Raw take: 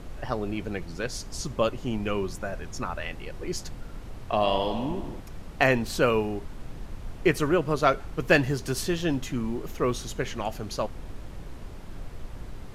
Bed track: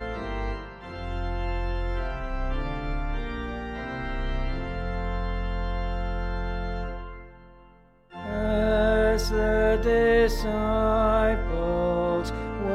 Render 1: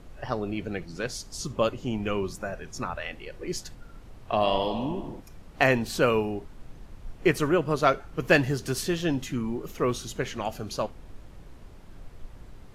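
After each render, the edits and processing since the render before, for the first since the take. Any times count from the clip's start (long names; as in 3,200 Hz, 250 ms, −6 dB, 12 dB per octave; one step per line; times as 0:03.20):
noise reduction from a noise print 7 dB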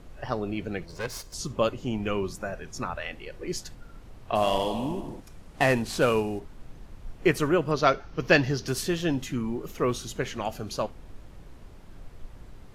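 0:00.86–0:01.34: lower of the sound and its delayed copy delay 1.9 ms
0:04.35–0:06.40: variable-slope delta modulation 64 kbit/s
0:07.71–0:08.68: high shelf with overshoot 6,800 Hz −7.5 dB, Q 3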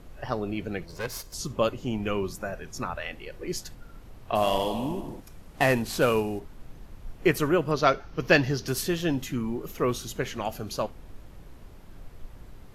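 parametric band 12,000 Hz +9 dB 0.21 octaves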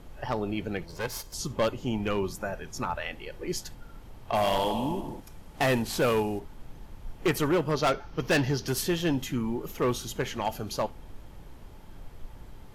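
hollow resonant body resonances 870/3,200 Hz, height 8 dB
hard clipping −20 dBFS, distortion −11 dB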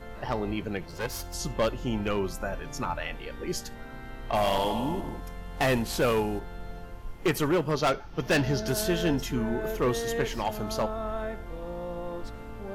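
mix in bed track −11.5 dB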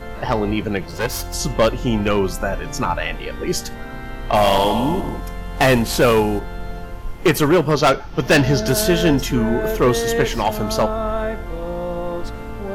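level +10.5 dB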